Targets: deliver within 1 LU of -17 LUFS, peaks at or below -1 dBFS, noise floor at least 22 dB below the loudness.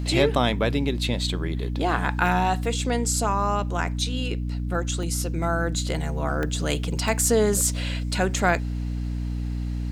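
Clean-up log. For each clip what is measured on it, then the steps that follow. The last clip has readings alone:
dropouts 5; longest dropout 1.8 ms; hum 60 Hz; harmonics up to 300 Hz; hum level -25 dBFS; loudness -24.5 LUFS; peak -4.0 dBFS; loudness target -17.0 LUFS
-> interpolate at 2.26/5.03/6.43/7.08/8.34, 1.8 ms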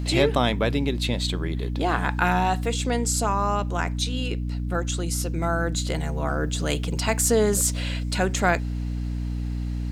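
dropouts 0; hum 60 Hz; harmonics up to 300 Hz; hum level -25 dBFS
-> notches 60/120/180/240/300 Hz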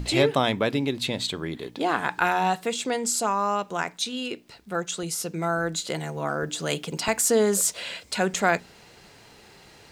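hum none; loudness -26.0 LUFS; peak -5.0 dBFS; loudness target -17.0 LUFS
-> gain +9 dB; limiter -1 dBFS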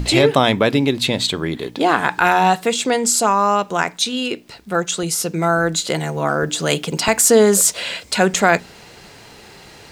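loudness -17.0 LUFS; peak -1.0 dBFS; noise floor -43 dBFS

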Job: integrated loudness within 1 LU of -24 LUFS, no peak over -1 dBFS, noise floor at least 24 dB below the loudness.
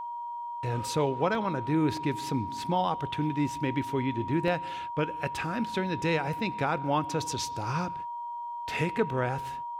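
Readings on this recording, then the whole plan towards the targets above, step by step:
dropouts 3; longest dropout 1.2 ms; steady tone 950 Hz; tone level -34 dBFS; loudness -30.5 LUFS; peak -13.0 dBFS; loudness target -24.0 LUFS
-> interpolate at 1.35/1.97/4.48, 1.2 ms; notch 950 Hz, Q 30; gain +6.5 dB

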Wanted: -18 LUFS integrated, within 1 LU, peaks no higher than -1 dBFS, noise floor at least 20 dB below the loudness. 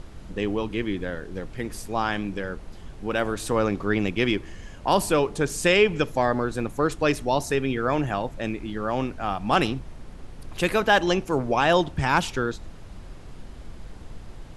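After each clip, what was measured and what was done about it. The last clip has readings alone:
noise floor -42 dBFS; noise floor target -45 dBFS; loudness -25.0 LUFS; peak -6.5 dBFS; loudness target -18.0 LUFS
-> noise print and reduce 6 dB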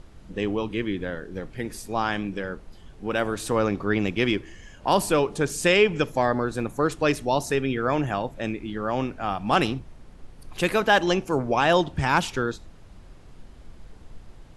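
noise floor -48 dBFS; loudness -25.0 LUFS; peak -6.5 dBFS; loudness target -18.0 LUFS
-> gain +7 dB; limiter -1 dBFS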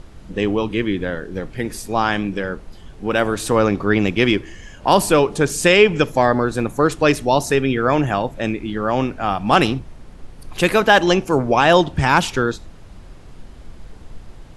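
loudness -18.0 LUFS; peak -1.0 dBFS; noise floor -41 dBFS

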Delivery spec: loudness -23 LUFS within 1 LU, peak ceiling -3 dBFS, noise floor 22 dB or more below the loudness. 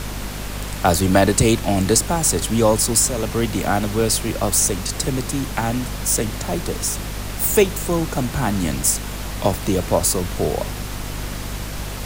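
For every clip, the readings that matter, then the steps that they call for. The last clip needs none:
hum 50 Hz; harmonics up to 250 Hz; hum level -27 dBFS; noise floor -29 dBFS; noise floor target -42 dBFS; loudness -20.0 LUFS; peak -3.0 dBFS; loudness target -23.0 LUFS
-> de-hum 50 Hz, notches 5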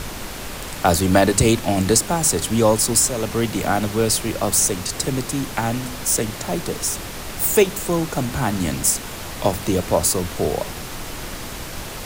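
hum none; noise floor -32 dBFS; noise floor target -42 dBFS
-> noise print and reduce 10 dB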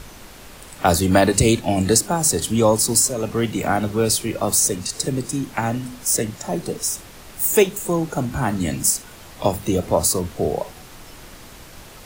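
noise floor -42 dBFS; loudness -20.0 LUFS; peak -3.0 dBFS; loudness target -23.0 LUFS
-> gain -3 dB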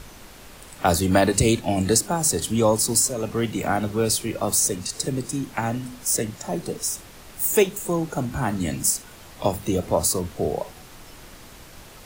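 loudness -23.0 LUFS; peak -6.0 dBFS; noise floor -45 dBFS

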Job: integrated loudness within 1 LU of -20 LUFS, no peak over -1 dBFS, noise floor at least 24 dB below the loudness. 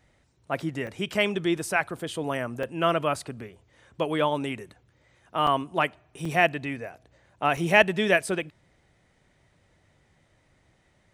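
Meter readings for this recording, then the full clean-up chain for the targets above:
dropouts 5; longest dropout 3.3 ms; loudness -26.5 LUFS; peak -3.5 dBFS; loudness target -20.0 LUFS
-> interpolate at 0.87/2.63/5.47/6.25/7.57, 3.3 ms; gain +6.5 dB; limiter -1 dBFS

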